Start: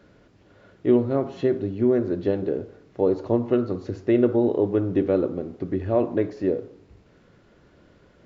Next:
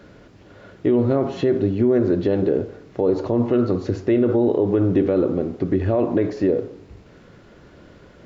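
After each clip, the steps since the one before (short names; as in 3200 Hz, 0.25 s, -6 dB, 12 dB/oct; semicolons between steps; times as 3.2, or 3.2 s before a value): limiter -18 dBFS, peak gain reduction 10 dB; gain +8.5 dB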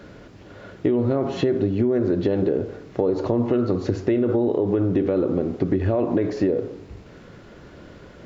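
compressor, threshold -20 dBFS, peak gain reduction 7 dB; gain +3 dB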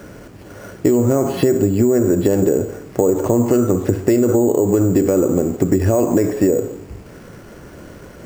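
careless resampling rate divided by 6×, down filtered, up hold; gain +6 dB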